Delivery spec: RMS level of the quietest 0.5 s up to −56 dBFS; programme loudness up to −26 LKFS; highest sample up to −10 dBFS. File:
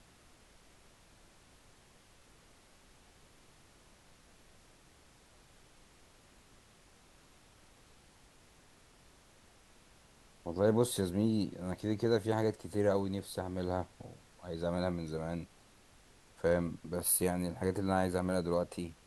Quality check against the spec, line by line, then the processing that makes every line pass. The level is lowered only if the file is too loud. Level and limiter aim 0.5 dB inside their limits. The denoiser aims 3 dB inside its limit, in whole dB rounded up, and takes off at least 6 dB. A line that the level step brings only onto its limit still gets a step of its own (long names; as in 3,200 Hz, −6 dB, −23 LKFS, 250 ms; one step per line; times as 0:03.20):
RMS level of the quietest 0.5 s −62 dBFS: in spec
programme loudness −34.0 LKFS: in spec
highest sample −15.5 dBFS: in spec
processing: no processing needed